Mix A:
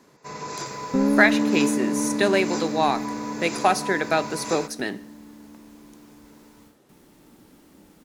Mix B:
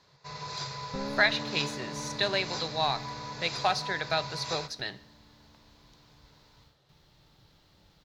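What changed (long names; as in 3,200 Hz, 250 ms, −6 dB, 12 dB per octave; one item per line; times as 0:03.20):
first sound: send +11.0 dB
master: add drawn EQ curve 140 Hz 0 dB, 240 Hz −22 dB, 610 Hz −8 dB, 2,500 Hz −6 dB, 4,100 Hz +4 dB, 9,600 Hz −22 dB, 15,000 Hz −15 dB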